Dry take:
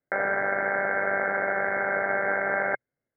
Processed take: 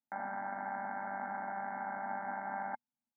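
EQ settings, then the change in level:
pair of resonant band-passes 450 Hz, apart 1.9 octaves
0.0 dB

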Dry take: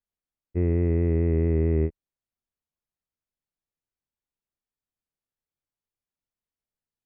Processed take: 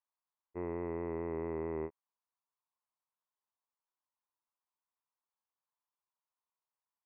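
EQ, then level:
resonant band-pass 1,000 Hz, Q 4.7
+9.5 dB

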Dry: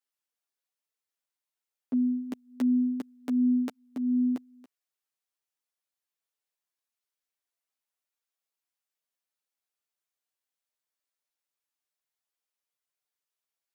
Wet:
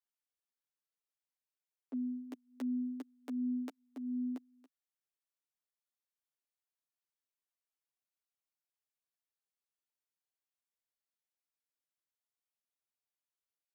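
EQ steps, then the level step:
elliptic high-pass filter 260 Hz
−8.0 dB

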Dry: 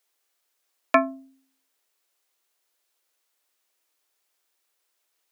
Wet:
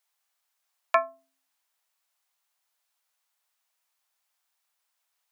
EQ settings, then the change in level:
dynamic equaliser 4,600 Hz, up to −6 dB, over −41 dBFS, Q 0.74
four-pole ladder high-pass 620 Hz, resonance 30%
+3.0 dB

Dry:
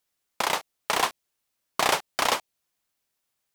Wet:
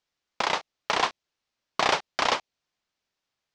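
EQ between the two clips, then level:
low-pass filter 5,900 Hz 24 dB per octave
0.0 dB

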